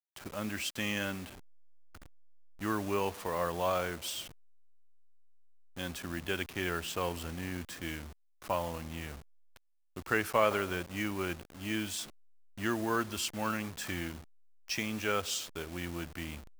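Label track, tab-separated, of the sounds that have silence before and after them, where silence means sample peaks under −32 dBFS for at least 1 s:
2.620000	4.210000	sound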